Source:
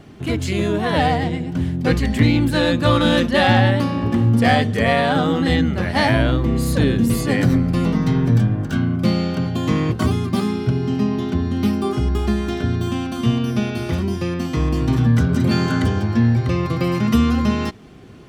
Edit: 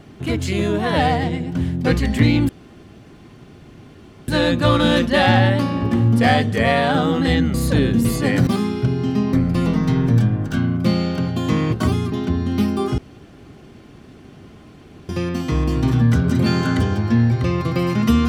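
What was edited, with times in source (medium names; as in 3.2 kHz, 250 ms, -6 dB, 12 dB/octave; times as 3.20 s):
2.49 s: insert room tone 1.79 s
5.75–6.59 s: delete
10.31–11.17 s: move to 7.52 s
12.03–14.14 s: room tone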